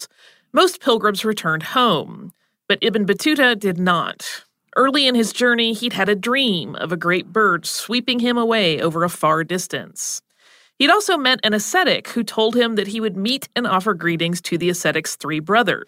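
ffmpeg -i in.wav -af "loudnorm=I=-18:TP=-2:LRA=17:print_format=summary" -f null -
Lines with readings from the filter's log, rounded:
Input Integrated:    -18.5 LUFS
Input True Peak:      -1.3 dBTP
Input LRA:             1.8 LU
Input Threshold:     -28.8 LUFS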